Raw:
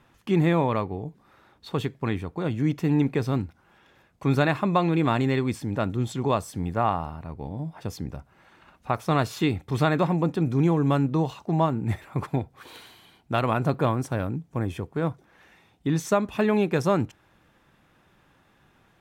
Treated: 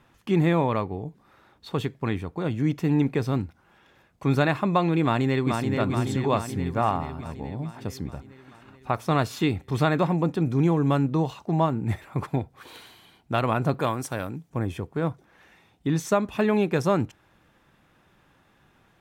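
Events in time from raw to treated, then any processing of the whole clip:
5.03–5.74 s: echo throw 430 ms, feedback 65%, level -4 dB
13.80–14.50 s: tilt EQ +2 dB/octave

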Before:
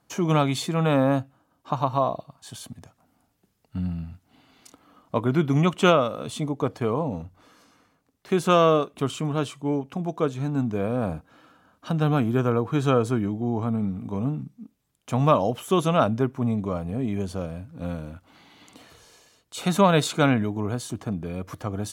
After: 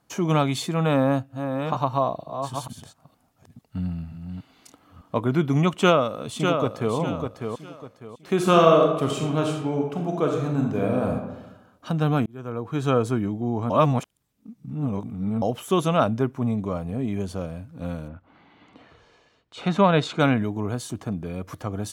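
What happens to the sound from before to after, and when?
0.81–5.18 s: chunks repeated in reverse 467 ms, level -7 dB
5.79–6.95 s: echo throw 600 ms, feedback 30%, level -5.5 dB
8.34–11.12 s: reverb throw, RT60 1 s, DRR 1 dB
12.26–12.97 s: fade in
13.70–15.42 s: reverse
18.07–20.18 s: low-pass 1.8 kHz -> 4.2 kHz

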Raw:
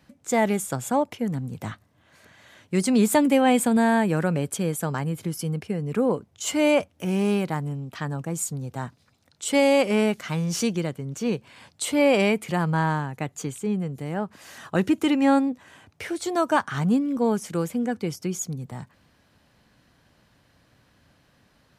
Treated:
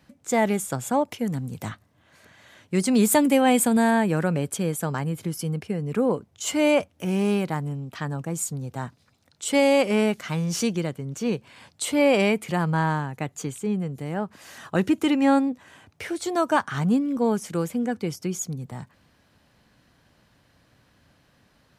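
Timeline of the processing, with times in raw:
1.08–1.69 s: treble shelf 3.7 kHz +6.5 dB
2.91–3.91 s: treble shelf 7.2 kHz +7.5 dB

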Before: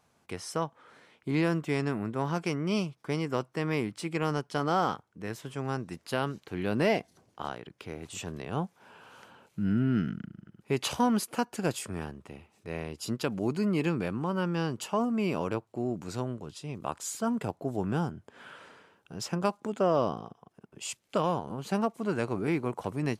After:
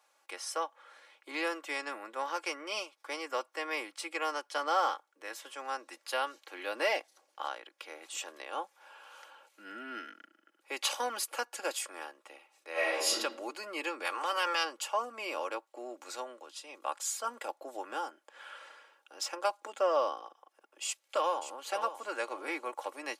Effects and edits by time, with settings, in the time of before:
12.72–13.12 s: reverb throw, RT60 0.87 s, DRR -11.5 dB
14.04–14.63 s: spectral peaks clipped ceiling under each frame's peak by 22 dB
20.84–21.42 s: echo throw 570 ms, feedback 20%, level -10.5 dB
whole clip: Bessel high-pass 680 Hz, order 8; comb 3.6 ms, depth 62%

